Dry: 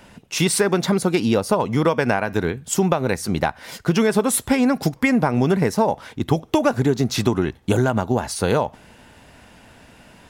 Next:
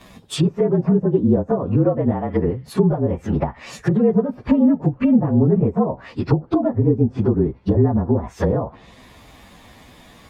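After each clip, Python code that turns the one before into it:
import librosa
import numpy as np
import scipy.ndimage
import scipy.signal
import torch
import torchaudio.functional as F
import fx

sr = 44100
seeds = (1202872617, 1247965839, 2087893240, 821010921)

y = fx.partial_stretch(x, sr, pct=111)
y = fx.env_lowpass_down(y, sr, base_hz=500.0, full_db=-19.0)
y = y * librosa.db_to_amplitude(5.5)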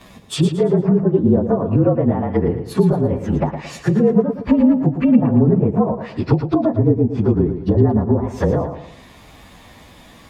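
y = fx.echo_feedback(x, sr, ms=113, feedback_pct=37, wet_db=-9)
y = y * librosa.db_to_amplitude(1.5)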